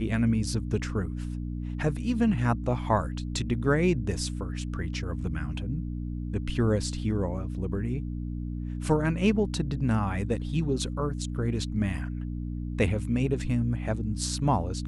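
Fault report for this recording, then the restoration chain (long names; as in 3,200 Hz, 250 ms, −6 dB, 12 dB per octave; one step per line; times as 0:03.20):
mains hum 60 Hz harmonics 5 −33 dBFS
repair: hum removal 60 Hz, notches 5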